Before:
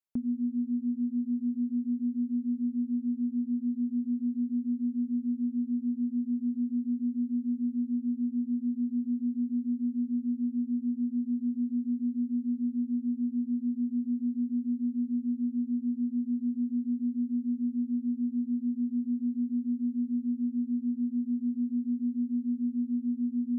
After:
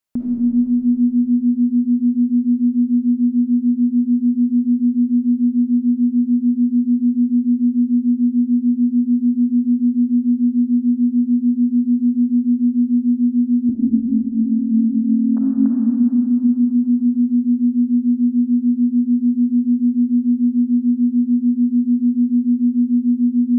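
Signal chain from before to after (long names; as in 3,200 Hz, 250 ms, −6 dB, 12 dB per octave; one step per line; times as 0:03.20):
0:13.69–0:15.67: three sine waves on the formant tracks
convolution reverb RT60 3.4 s, pre-delay 13 ms, DRR −2.5 dB
level +9 dB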